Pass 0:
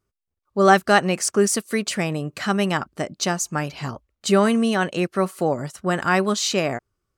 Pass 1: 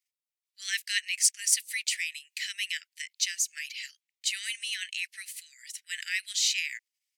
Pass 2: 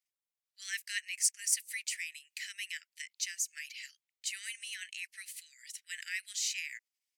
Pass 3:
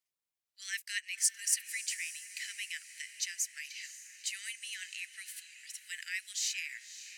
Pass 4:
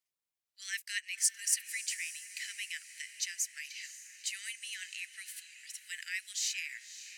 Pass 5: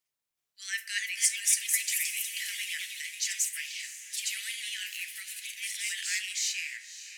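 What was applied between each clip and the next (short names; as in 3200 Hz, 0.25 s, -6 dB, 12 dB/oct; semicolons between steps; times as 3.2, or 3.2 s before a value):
steep high-pass 1900 Hz 72 dB/oct; in parallel at -1 dB: level quantiser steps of 22 dB; on the sum: gain -2.5 dB
dynamic EQ 3600 Hz, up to -8 dB, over -44 dBFS, Q 1.5; gain -4.5 dB
diffused feedback echo 0.565 s, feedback 51%, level -13 dB
nothing audible
echoes that change speed 0.376 s, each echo +2 st, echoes 3; reverb RT60 0.60 s, pre-delay 7 ms, DRR 7 dB; gain +3 dB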